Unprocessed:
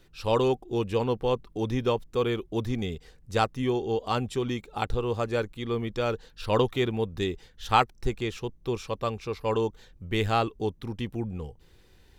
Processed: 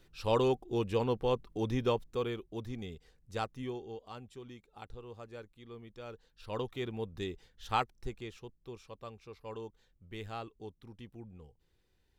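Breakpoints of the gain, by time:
1.95 s -4.5 dB
2.47 s -11.5 dB
3.62 s -11.5 dB
4.11 s -19.5 dB
5.94 s -19.5 dB
7.05 s -9.5 dB
7.77 s -9.5 dB
8.74 s -17 dB

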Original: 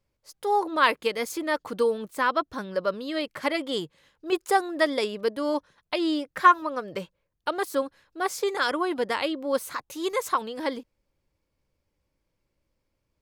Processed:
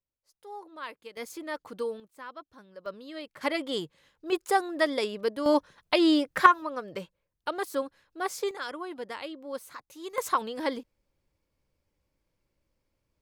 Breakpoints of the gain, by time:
-19 dB
from 1.17 s -9 dB
from 2 s -19 dB
from 2.86 s -11 dB
from 3.41 s -2.5 dB
from 5.46 s +4 dB
from 6.46 s -4 dB
from 8.51 s -11 dB
from 10.18 s -1 dB

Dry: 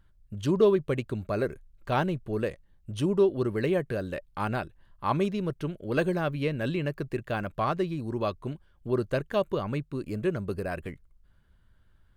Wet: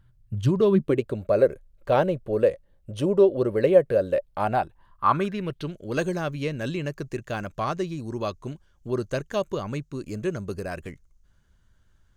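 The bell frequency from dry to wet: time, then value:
bell +14.5 dB 0.59 oct
0.63 s 120 Hz
1.07 s 540 Hz
4.24 s 540 Hz
5.37 s 1700 Hz
5.75 s 6400 Hz

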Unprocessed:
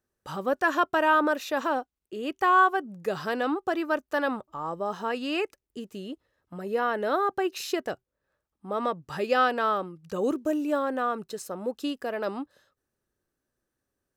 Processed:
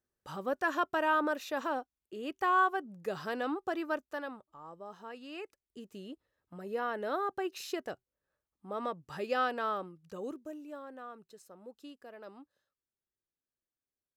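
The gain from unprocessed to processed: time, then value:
3.93 s -7 dB
4.38 s -16 dB
5.31 s -16 dB
5.92 s -8 dB
9.87 s -8 dB
10.62 s -18.5 dB

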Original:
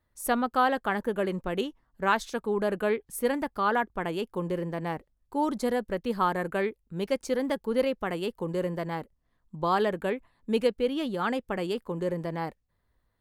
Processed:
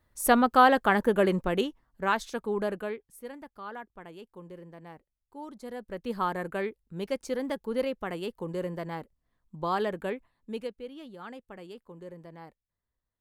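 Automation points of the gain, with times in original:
1.29 s +5 dB
2.03 s -2 dB
2.64 s -2 dB
3.18 s -15 dB
5.59 s -15 dB
6.1 s -3.5 dB
10.11 s -3.5 dB
10.87 s -14.5 dB

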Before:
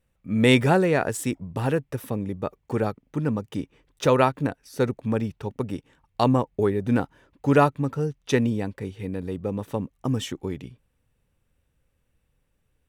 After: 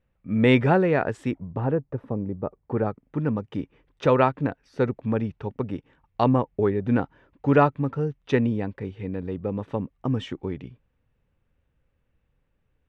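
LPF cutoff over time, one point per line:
1.3 s 2500 Hz
1.71 s 1000 Hz
2.46 s 1000 Hz
3.28 s 2700 Hz

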